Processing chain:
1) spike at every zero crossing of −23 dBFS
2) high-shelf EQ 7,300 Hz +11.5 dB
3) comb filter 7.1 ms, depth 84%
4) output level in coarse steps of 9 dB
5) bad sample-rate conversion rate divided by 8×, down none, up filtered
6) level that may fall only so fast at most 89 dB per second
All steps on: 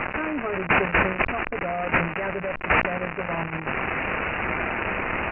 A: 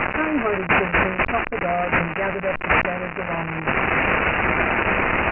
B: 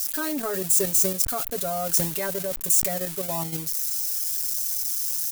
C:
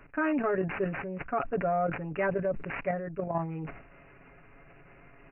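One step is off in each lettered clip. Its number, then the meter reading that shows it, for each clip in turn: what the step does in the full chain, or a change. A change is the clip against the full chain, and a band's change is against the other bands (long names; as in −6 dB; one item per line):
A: 4, change in crest factor −3.0 dB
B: 5, 2 kHz band −12.5 dB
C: 1, distortion level −3 dB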